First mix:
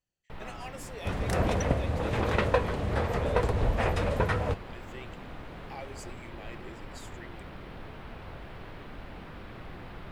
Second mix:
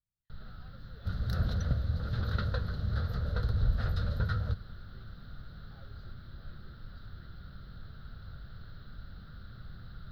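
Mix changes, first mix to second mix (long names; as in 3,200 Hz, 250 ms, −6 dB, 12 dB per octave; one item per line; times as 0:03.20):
speech: add head-to-tape spacing loss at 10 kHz 35 dB
master: add drawn EQ curve 120 Hz 0 dB, 210 Hz −7 dB, 310 Hz −18 dB, 590 Hz −16 dB, 970 Hz −24 dB, 1,400 Hz −2 dB, 2,400 Hz −27 dB, 4,100 Hz +3 dB, 8,100 Hz −28 dB, 14,000 Hz −3 dB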